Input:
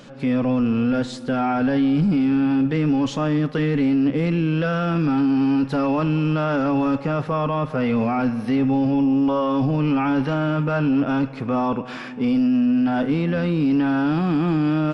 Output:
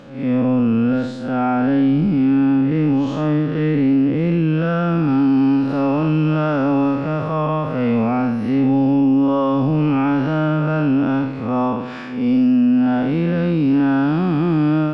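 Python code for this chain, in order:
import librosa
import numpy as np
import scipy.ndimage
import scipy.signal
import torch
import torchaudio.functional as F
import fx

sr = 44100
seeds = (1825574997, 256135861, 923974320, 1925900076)

y = fx.spec_blur(x, sr, span_ms=149.0)
y = fx.high_shelf(y, sr, hz=4200.0, db=fx.steps((0.0, -11.0), (5.07, -5.5)))
y = y * 10.0 ** (4.0 / 20.0)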